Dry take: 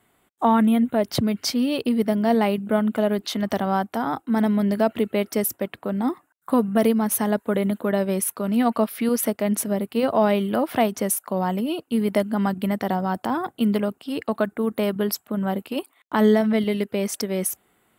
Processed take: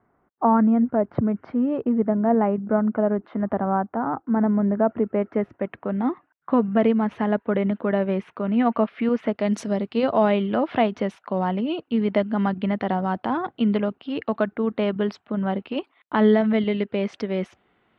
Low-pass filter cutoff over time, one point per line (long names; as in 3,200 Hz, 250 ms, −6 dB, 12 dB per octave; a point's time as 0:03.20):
low-pass filter 24 dB per octave
0:05.00 1,500 Hz
0:06.04 2,800 Hz
0:09.27 2,800 Hz
0:09.53 6,100 Hz
0:10.31 3,500 Hz